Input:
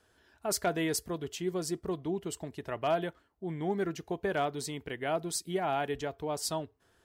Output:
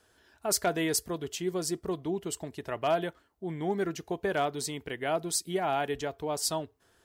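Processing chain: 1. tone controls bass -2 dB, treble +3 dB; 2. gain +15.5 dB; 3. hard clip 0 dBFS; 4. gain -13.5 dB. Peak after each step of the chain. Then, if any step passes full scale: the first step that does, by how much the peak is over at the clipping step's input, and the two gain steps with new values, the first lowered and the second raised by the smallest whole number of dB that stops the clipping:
-17.5, -2.0, -2.0, -15.5 dBFS; no overload

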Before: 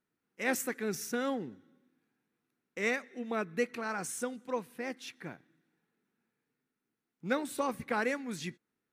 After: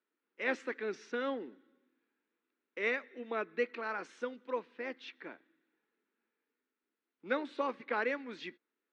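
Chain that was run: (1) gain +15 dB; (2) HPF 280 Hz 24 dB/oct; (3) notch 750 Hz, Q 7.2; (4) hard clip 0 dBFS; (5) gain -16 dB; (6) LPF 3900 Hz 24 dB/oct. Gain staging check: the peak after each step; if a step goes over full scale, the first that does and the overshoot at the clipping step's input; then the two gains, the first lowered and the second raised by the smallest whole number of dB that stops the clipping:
-2.5, -2.0, -2.5, -2.5, -18.5, -19.0 dBFS; no overload

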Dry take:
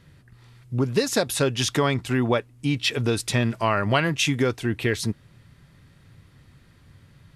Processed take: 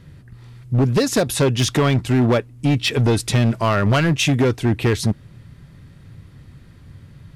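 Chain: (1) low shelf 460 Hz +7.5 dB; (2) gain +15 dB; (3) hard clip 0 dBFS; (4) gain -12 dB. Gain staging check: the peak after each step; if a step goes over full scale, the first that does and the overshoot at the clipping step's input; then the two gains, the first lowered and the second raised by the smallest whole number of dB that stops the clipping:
-5.5, +9.5, 0.0, -12.0 dBFS; step 2, 9.5 dB; step 2 +5 dB, step 4 -2 dB

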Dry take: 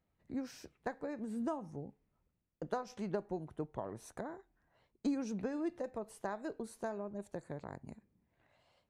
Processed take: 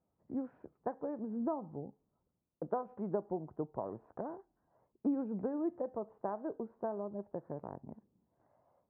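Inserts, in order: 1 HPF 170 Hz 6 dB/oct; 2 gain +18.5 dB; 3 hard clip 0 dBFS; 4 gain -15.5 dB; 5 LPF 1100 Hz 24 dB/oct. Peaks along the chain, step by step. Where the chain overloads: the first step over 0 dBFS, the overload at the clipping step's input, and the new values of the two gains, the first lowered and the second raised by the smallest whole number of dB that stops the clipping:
-24.0, -5.5, -5.5, -21.0, -21.5 dBFS; no overload

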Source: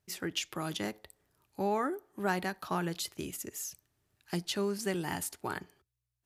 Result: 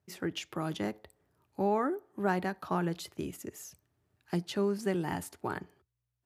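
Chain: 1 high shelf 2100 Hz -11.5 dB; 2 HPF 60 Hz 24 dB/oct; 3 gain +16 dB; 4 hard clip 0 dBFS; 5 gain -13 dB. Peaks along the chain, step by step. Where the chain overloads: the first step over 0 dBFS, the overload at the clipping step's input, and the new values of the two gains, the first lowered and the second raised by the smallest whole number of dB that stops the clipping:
-20.5, -19.0, -3.0, -3.0, -16.0 dBFS; no overload

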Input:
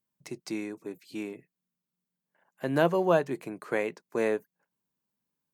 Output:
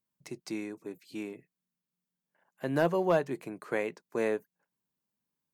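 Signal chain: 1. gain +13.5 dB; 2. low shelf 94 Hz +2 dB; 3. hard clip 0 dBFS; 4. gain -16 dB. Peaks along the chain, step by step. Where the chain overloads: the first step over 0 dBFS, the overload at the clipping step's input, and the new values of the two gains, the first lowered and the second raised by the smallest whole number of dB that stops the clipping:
+4.5, +4.5, 0.0, -16.0 dBFS; step 1, 4.5 dB; step 1 +8.5 dB, step 4 -11 dB

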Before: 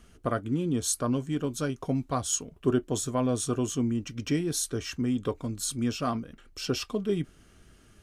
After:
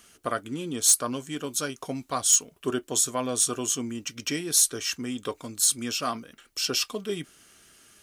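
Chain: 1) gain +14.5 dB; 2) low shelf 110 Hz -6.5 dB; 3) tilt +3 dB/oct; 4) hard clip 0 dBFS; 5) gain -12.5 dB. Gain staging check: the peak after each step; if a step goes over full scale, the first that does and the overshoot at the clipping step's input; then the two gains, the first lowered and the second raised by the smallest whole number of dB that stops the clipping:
+1.5, +1.0, +7.0, 0.0, -12.5 dBFS; step 1, 7.0 dB; step 1 +7.5 dB, step 5 -5.5 dB

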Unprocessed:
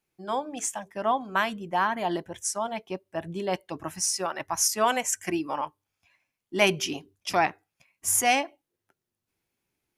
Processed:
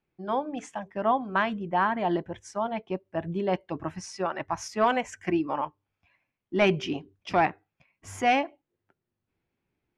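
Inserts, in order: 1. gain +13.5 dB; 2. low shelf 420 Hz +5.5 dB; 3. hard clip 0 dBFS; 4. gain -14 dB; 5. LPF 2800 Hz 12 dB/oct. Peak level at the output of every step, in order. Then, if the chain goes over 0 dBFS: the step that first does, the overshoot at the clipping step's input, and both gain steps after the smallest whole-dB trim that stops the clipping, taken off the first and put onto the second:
+6.5, +8.0, 0.0, -14.0, -13.5 dBFS; step 1, 8.0 dB; step 1 +5.5 dB, step 4 -6 dB

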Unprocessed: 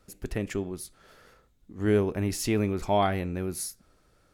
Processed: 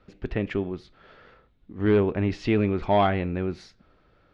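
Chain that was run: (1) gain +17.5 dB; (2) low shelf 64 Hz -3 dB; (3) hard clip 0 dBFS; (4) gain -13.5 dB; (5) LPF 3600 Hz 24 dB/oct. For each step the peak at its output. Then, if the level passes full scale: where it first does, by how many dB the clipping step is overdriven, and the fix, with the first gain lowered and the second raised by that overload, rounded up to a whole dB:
+5.5, +5.0, 0.0, -13.5, -12.5 dBFS; step 1, 5.0 dB; step 1 +12.5 dB, step 4 -8.5 dB

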